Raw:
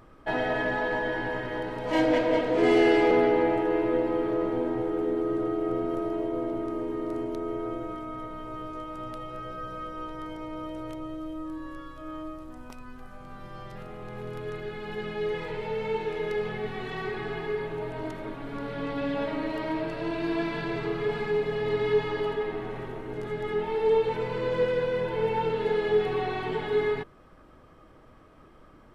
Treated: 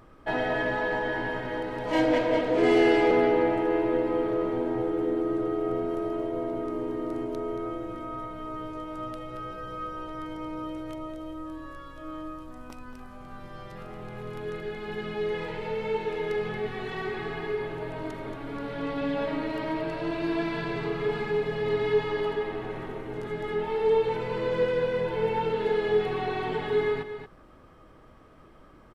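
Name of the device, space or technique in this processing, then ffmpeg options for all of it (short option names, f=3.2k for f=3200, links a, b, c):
ducked delay: -filter_complex "[0:a]asplit=3[a][b][c];[b]adelay=228,volume=-8.5dB[d];[c]apad=whole_len=1286331[e];[d][e]sidechaincompress=threshold=-28dB:ratio=8:attack=16:release=584[f];[a][f]amix=inputs=2:normalize=0"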